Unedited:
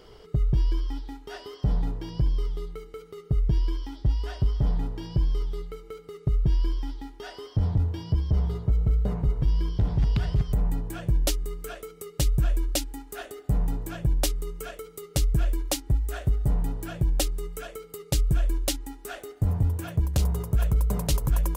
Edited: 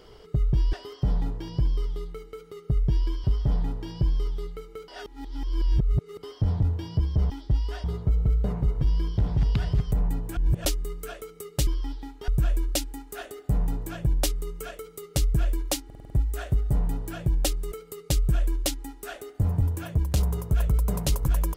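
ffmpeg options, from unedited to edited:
-filter_complex "[0:a]asplit=17[a][b][c][d][e][f][g][h][i][j][k][l][m][n][o][p][q];[a]atrim=end=0.732[r];[b]atrim=start=1.338:end=3.852[s];[c]atrim=start=4.388:end=6.032[t];[d]atrim=start=6.028:end=7.382,asetpts=PTS-STARTPTS,areverse[u];[e]atrim=start=7.378:end=8.452[v];[f]atrim=start=3.848:end=4.392[w];[g]atrim=start=8.448:end=10.982[x];[h]atrim=start=10.978:end=11.262,asetpts=PTS-STARTPTS,areverse[y];[i]atrim=start=11.258:end=12.282[z];[j]atrim=start=0.728:end=1.342[aa];[k]atrim=start=12.278:end=15.902[ab];[l]atrim=start=15.848:end=15.902[ac];[m]atrim=start=15.848:end=15.902[ad];[n]atrim=start=15.848:end=15.902[ae];[o]atrim=start=15.848:end=15.902[af];[p]atrim=start=15.848:end=17.472[ag];[q]atrim=start=17.738[ah];[r][s]acrossfade=d=0.004:c1=hsin:c2=hsin[ai];[ai][t]acrossfade=d=0.004:c1=hsin:c2=hsin[aj];[aj][u]acrossfade=d=0.004:c1=hsin:c2=hsin[ak];[ak][v]acrossfade=d=0.004:c1=hsin:c2=hsin[al];[al][w]acrossfade=d=0.004:c1=hsin:c2=hsin[am];[am][x]acrossfade=d=0.004:c1=hsin:c2=hsin[an];[an][y]acrossfade=d=0.004:c1=hsin:c2=hsin[ao];[ao][z]acrossfade=d=0.004:c1=hsin:c2=hsin[ap];[ap][aa]acrossfade=d=0.004:c1=hsin:c2=hsin[aq];[aq][ab]acrossfade=d=0.004:c1=hsin:c2=hsin[ar];[ar][ac]acrossfade=d=0.004:c1=hsin:c2=hsin[as];[as][ad]acrossfade=d=0.004:c1=hsin:c2=hsin[at];[at][ae]acrossfade=d=0.004:c1=hsin:c2=hsin[au];[au][af]acrossfade=d=0.004:c1=hsin:c2=hsin[av];[av][ag]acrossfade=d=0.004:c1=hsin:c2=hsin[aw];[aw][ah]acrossfade=d=0.004:c1=hsin:c2=hsin"

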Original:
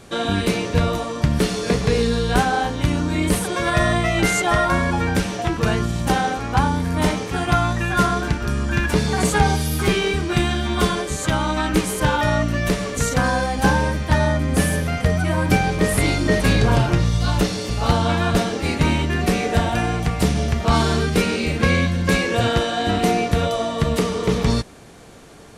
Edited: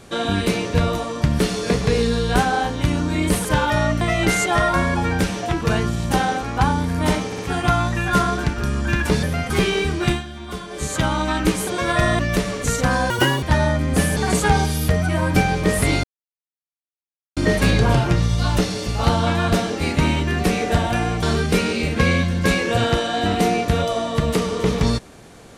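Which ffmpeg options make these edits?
-filter_complex "[0:a]asplit=17[a][b][c][d][e][f][g][h][i][j][k][l][m][n][o][p][q];[a]atrim=end=3.452[r];[b]atrim=start=11.958:end=12.522[s];[c]atrim=start=3.968:end=7.282[t];[d]atrim=start=7.218:end=7.282[u];[e]atrim=start=7.218:end=9.072[v];[f]atrim=start=14.768:end=15.042[w];[g]atrim=start=9.788:end=10.52,asetpts=PTS-STARTPTS,afade=t=out:st=0.602:d=0.13:silence=0.251189[x];[h]atrim=start=10.52:end=10.99,asetpts=PTS-STARTPTS,volume=-12dB[y];[i]atrim=start=10.99:end=11.962,asetpts=PTS-STARTPTS,afade=t=in:d=0.13:silence=0.251189[z];[j]atrim=start=3.448:end=3.972[aa];[k]atrim=start=12.518:end=13.434[ab];[l]atrim=start=13.43:end=14.03,asetpts=PTS-STARTPTS,asetrate=81144,aresample=44100,atrim=end_sample=14380,asetpts=PTS-STARTPTS[ac];[m]atrim=start=14.026:end=14.772[ad];[n]atrim=start=9.068:end=9.792[ae];[o]atrim=start=15.038:end=16.19,asetpts=PTS-STARTPTS,afade=t=out:st=1.148:d=0.004:c=hsin,apad=pad_dur=1.33[af];[p]atrim=start=16.19:end=20.052,asetpts=PTS-STARTPTS,afade=t=in:d=0.004:c=hsin[ag];[q]atrim=start=20.858[ah];[r][s]acrossfade=d=0.004:c1=hsin:c2=hsin[ai];[ai][t]acrossfade=d=0.004:c1=hsin:c2=hsin[aj];[aj][u]acrossfade=d=0.004:c1=hsin:c2=hsin[ak];[ak][v]acrossfade=d=0.004:c1=hsin:c2=hsin[al];[al][w]acrossfade=d=0.004:c1=hsin:c2=hsin[am];[x][y][z]concat=n=3:v=0:a=1[an];[am][an]acrossfade=d=0.004:c1=hsin:c2=hsin[ao];[ao][aa]acrossfade=d=0.004:c1=hsin:c2=hsin[ap];[ap][ab]acrossfade=d=0.004:c1=hsin:c2=hsin[aq];[aq][ac]acrossfade=d=0.004:c1=hsin:c2=hsin[ar];[ar][ad]acrossfade=d=0.004:c1=hsin:c2=hsin[as];[as][ae]acrossfade=d=0.004:c1=hsin:c2=hsin[at];[af][ag]concat=n=2:v=0:a=1[au];[at][au]acrossfade=d=0.004:c1=hsin:c2=hsin[av];[av][ah]acrossfade=d=0.004:c1=hsin:c2=hsin"

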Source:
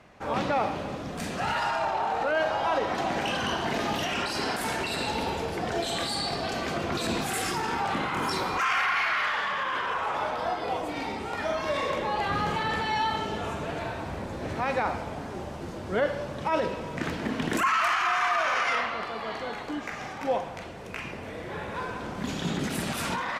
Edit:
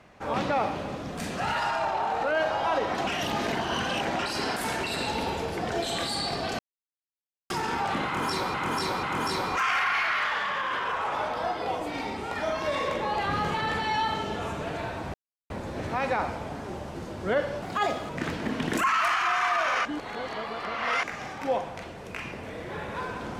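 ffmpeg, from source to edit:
-filter_complex "[0:a]asplit=12[a][b][c][d][e][f][g][h][i][j][k][l];[a]atrim=end=3.072[m];[b]atrim=start=3.068:end=4.192,asetpts=PTS-STARTPTS,areverse[n];[c]atrim=start=4.188:end=6.59,asetpts=PTS-STARTPTS,afade=t=out:st=2.398:d=0.004:c=hsin[o];[d]atrim=start=6.59:end=7.5,asetpts=PTS-STARTPTS,volume=0[p];[e]atrim=start=7.5:end=8.542,asetpts=PTS-STARTPTS,afade=t=in:d=0.004:c=hsin[q];[f]atrim=start=8.048:end=8.542[r];[g]atrim=start=8.048:end=14.16,asetpts=PTS-STARTPTS,afade=t=out:st=6.108:d=0.004:c=hsin,apad=pad_dur=0.36[s];[h]atrim=start=14.16:end=16.284,asetpts=PTS-STARTPTS,afade=t=in:d=0.004:c=hsin[t];[i]atrim=start=16.28:end=16.89,asetpts=PTS-STARTPTS,asetrate=56889,aresample=44100,atrim=end_sample=20853,asetpts=PTS-STARTPTS[u];[j]atrim=start=16.886:end=18.652[v];[k]atrim=start=18.648:end=19.832,asetpts=PTS-STARTPTS,areverse[w];[l]atrim=start=19.828[x];[m][n]acrossfade=d=0.004:c1=hsin:c2=hsin[y];[o][p][q]concat=n=3:v=0:a=1[z];[y][z]acrossfade=d=0.004:c1=hsin:c2=hsin[aa];[aa][r]acrossfade=d=0.004:c1=hsin:c2=hsin[ab];[s][t]concat=n=2:v=0:a=1[ac];[ab][ac]acrossfade=d=0.004:c1=hsin:c2=hsin[ad];[ad][u]acrossfade=d=0.004:c1=hsin:c2=hsin[ae];[ae][v]acrossfade=d=0.004:c1=hsin:c2=hsin[af];[af][w]acrossfade=d=0.004:c1=hsin:c2=hsin[ag];[ag][x]acrossfade=d=0.004:c1=hsin:c2=hsin"

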